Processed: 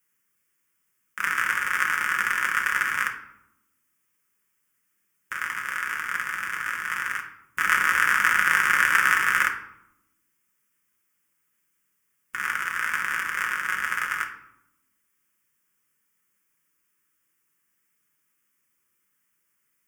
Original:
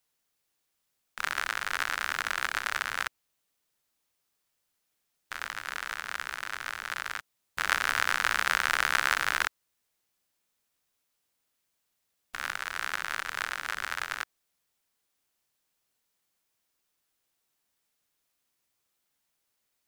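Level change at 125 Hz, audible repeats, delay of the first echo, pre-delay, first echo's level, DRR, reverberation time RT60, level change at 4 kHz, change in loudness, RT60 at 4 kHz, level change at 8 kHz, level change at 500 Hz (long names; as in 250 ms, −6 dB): can't be measured, no echo audible, no echo audible, 5 ms, no echo audible, 1.5 dB, 0.80 s, −1.5 dB, +6.5 dB, 0.50 s, +4.0 dB, −1.5 dB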